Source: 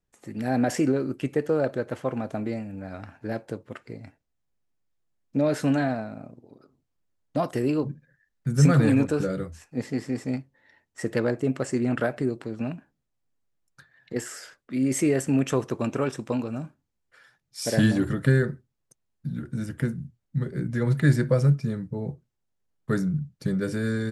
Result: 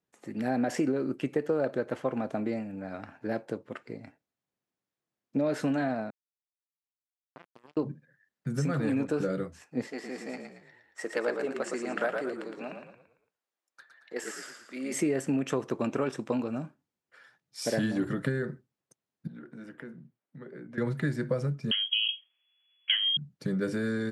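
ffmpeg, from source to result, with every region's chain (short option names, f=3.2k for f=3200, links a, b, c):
-filter_complex "[0:a]asettb=1/sr,asplit=3[a][b][c];[a]atrim=end=6.104[d];[b]atrim=start=6.1:end=7.77,asetpts=PTS-STARTPTS,afade=t=in:d=0.004:c=qsin,afade=t=out:st=1.666:d=0.004:c=qsin,highshelf=f=8k:g=-7.5,acompressor=threshold=-50dB:ratio=2:attack=3.2:release=140:knee=1:detection=peak,acrusher=bits=4:mix=0:aa=0.5[e];[c]atrim=start=7.766[f];[d][e]acrossfade=d=0.004:c1=hsin:c2=qsin[g];[g][f]acrossfade=d=0.004:c1=qsin:c2=hsin,asettb=1/sr,asplit=3[h][i][j];[h]atrim=end=9.874[k];[i]atrim=start=9.87:end=14.94,asetpts=PTS-STARTPTS,afade=t=in:d=0.004:c=qsin,afade=t=out:st=5.066:d=0.004:c=qsin,highpass=520,asplit=6[l][m][n][o][p][q];[m]adelay=113,afreqshift=-35,volume=-5.5dB[r];[n]adelay=226,afreqshift=-70,volume=-13.2dB[s];[o]adelay=339,afreqshift=-105,volume=-21dB[t];[p]adelay=452,afreqshift=-140,volume=-28.7dB[u];[q]adelay=565,afreqshift=-175,volume=-36.5dB[v];[l][r][s][t][u][v]amix=inputs=6:normalize=0,atrim=end_sample=223587[w];[j]atrim=start=14.936[x];[k][w]acrossfade=d=0.004:c1=hsin:c2=qsin[y];[y][x]acrossfade=d=0.004:c1=qsin:c2=hsin,asettb=1/sr,asplit=3[z][aa][ab];[z]atrim=end=19.274[ac];[aa]atrim=start=19.27:end=20.78,asetpts=PTS-STARTPTS,afade=t=in:d=0.004:c=qsin,afade=t=out:st=1.506:d=0.004:c=qsin,highpass=160,bass=f=250:g=-8,treble=f=4k:g=-14,acompressor=threshold=-41dB:ratio=3:attack=3.2:release=140:knee=1:detection=peak[ad];[ab]atrim=start=20.776[ae];[ac][ad]acrossfade=d=0.004:c1=hsin:c2=qsin[af];[af][ae]acrossfade=d=0.004:c1=qsin:c2=hsin,asettb=1/sr,asplit=3[ag][ah][ai];[ag]atrim=end=21.714[aj];[ah]atrim=start=21.71:end=23.17,asetpts=PTS-STARTPTS,afade=t=in:d=0.004:c=qsin,afade=t=out:st=1.456:d=0.004:c=qsin,equalizer=f=760:t=o:w=1.7:g=12.5,acontrast=48,lowpass=f=2.9k:t=q:w=0.5098,lowpass=f=2.9k:t=q:w=0.6013,lowpass=f=2.9k:t=q:w=0.9,lowpass=f=2.9k:t=q:w=2.563,afreqshift=-3400[ak];[ai]atrim=start=23.166[al];[aj][ak]acrossfade=d=0.004:c1=hsin:c2=qsin[am];[am][al]acrossfade=d=0.004:c1=qsin:c2=hsin,acompressor=threshold=-23dB:ratio=6,highpass=170,highshelf=f=5.8k:g=-8"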